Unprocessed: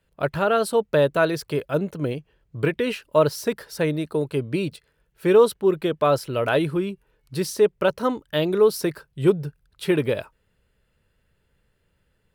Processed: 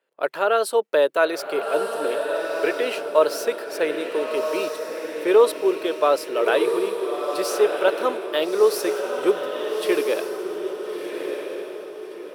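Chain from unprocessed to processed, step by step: high-pass 360 Hz 24 dB/octave; echo that smears into a reverb 1316 ms, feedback 44%, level -5 dB; tape noise reduction on one side only decoder only; trim +1 dB

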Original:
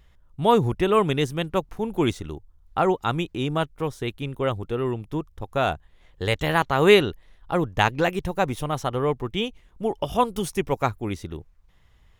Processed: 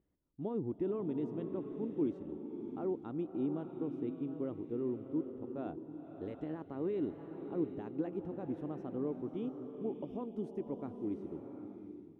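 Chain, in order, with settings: peak limiter -14.5 dBFS, peak gain reduction 12 dB; band-pass filter 290 Hz, Q 3.2; swelling reverb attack 740 ms, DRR 6 dB; trim -4 dB

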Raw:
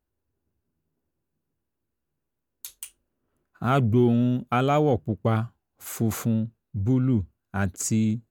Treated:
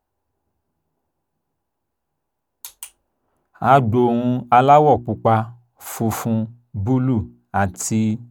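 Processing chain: peaking EQ 820 Hz +13.5 dB 0.91 oct; hum notches 60/120/180/240/300/360 Hz; trim +3.5 dB

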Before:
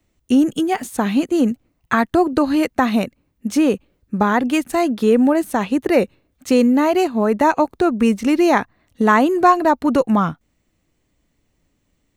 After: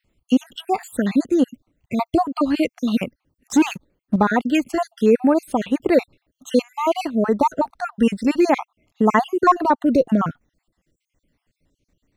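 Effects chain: random holes in the spectrogram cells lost 52%; 3.47–4.16 s: waveshaping leveller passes 2; treble shelf 8.7 kHz -6 dB

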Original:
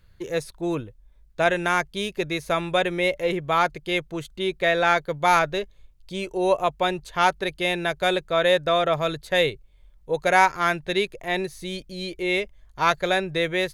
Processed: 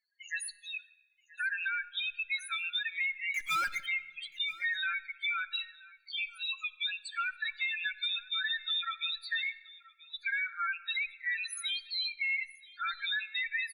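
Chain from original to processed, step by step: steep high-pass 1.6 kHz 36 dB/octave; treble shelf 5.7 kHz +5 dB; in parallel at -9 dB: fuzz box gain 40 dB, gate -47 dBFS; on the sum: loudest bins only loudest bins 4; compression 4:1, threshold -28 dBFS, peak gain reduction 9 dB; 3.34–3.86 s: power-law waveshaper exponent 0.5; delay 979 ms -21.5 dB; on a send at -16 dB: reverberation RT60 1.3 s, pre-delay 8 ms; on the sum: trim -3.5 dB

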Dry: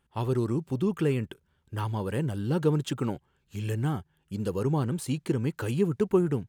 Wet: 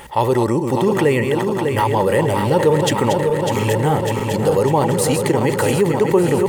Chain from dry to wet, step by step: backward echo that repeats 300 ms, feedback 80%, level -8 dB; treble shelf 2.7 kHz +11 dB; small resonant body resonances 570/850/1900 Hz, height 16 dB, ringing for 20 ms; level flattener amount 50%

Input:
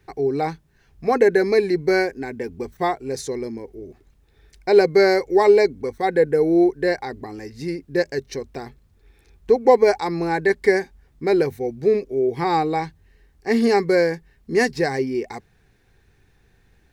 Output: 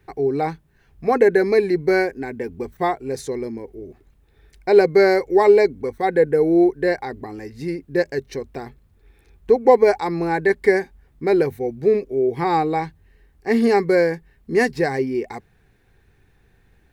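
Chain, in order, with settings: peaking EQ 5.6 kHz -6 dB 1.2 oct; trim +1 dB

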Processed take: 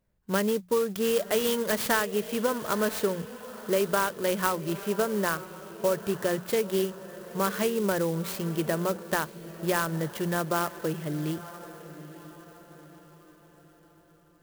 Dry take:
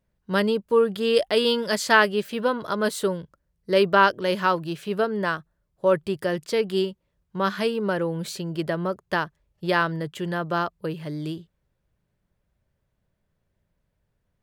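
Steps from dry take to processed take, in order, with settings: hum notches 60/120/180 Hz; compression, threshold -22 dBFS, peak gain reduction 10.5 dB; echo that smears into a reverb 962 ms, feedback 44%, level -14.5 dB; sampling jitter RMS 0.053 ms

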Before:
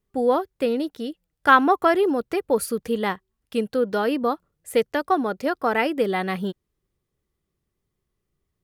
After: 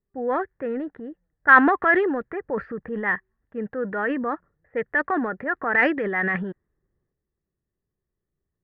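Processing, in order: resonant low-pass 1.8 kHz, resonance Q 9.4; transient shaper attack -3 dB, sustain +8 dB; level-controlled noise filter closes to 710 Hz, open at -7.5 dBFS; trim -5.5 dB

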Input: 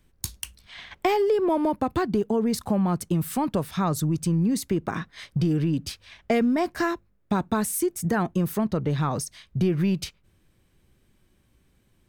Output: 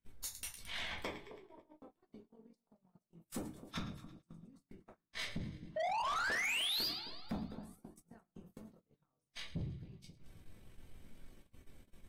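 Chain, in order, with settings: AM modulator 46 Hz, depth 55%; inverted gate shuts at -24 dBFS, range -38 dB; painted sound rise, 5.76–6.87 s, 600–5000 Hz -32 dBFS; on a send: two-band feedback delay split 1.1 kHz, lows 265 ms, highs 110 ms, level -15.5 dB; on the sum: simulated room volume 130 m³, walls furnished, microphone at 1.6 m; gate -57 dBFS, range -25 dB; in parallel at 0 dB: peak limiter -24 dBFS, peak gain reduction 7.5 dB; on the sum: saturation -29.5 dBFS, distortion -7 dB; trim -4.5 dB; AAC 48 kbps 48 kHz

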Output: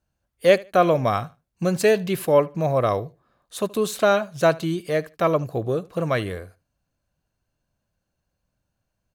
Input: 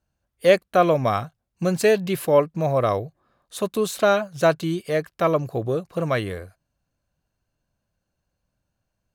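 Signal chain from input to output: feedback delay 75 ms, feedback 22%, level -22 dB

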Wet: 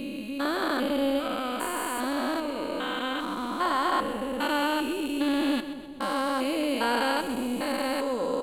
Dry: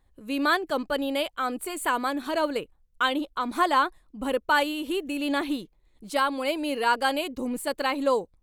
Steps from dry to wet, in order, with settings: spectrogram pixelated in time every 400 ms; two-band feedback delay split 870 Hz, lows 205 ms, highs 128 ms, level -12 dB; trim +5 dB

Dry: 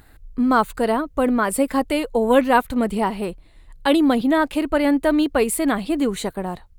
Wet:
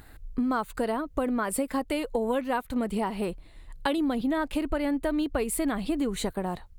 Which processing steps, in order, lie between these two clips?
3.98–6.33 s: bass shelf 110 Hz +9 dB; compression 6:1, threshold -25 dBFS, peak gain reduction 14.5 dB

